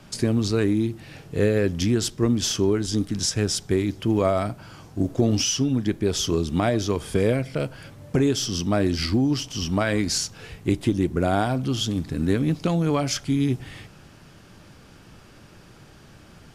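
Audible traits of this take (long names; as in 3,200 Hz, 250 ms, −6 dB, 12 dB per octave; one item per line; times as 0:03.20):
background noise floor −49 dBFS
spectral slope −5.0 dB per octave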